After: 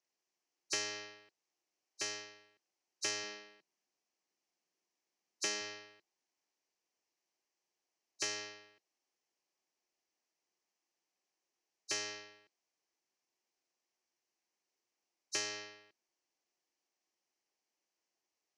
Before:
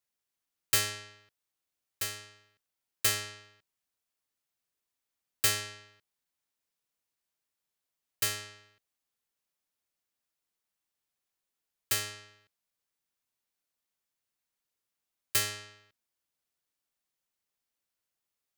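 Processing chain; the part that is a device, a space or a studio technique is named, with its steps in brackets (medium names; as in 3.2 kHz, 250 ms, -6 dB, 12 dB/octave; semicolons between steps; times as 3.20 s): hearing aid with frequency lowering (knee-point frequency compression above 3.8 kHz 1.5:1; compression 3:1, threshold -34 dBFS, peak gain reduction 9.5 dB; cabinet simulation 250–6100 Hz, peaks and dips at 350 Hz +8 dB, 770 Hz +4 dB, 1.4 kHz -7 dB, 3.6 kHz -8 dB, 5.9 kHz +5 dB); 3.23–5.61 s: resonant low shelf 120 Hz -9.5 dB, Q 3; trim +2 dB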